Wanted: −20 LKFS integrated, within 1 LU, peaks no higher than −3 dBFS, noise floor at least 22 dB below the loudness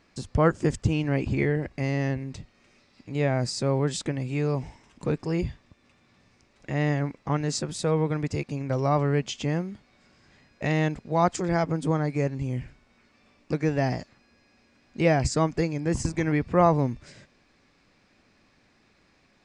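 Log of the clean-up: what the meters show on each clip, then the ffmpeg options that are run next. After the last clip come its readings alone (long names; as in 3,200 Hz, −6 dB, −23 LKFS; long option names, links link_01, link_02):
integrated loudness −26.5 LKFS; sample peak −6.5 dBFS; target loudness −20.0 LKFS
→ -af "volume=6.5dB,alimiter=limit=-3dB:level=0:latency=1"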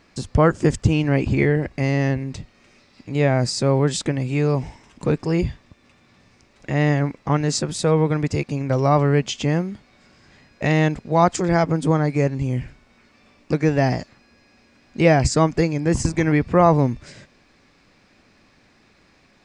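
integrated loudness −20.5 LKFS; sample peak −3.0 dBFS; background noise floor −57 dBFS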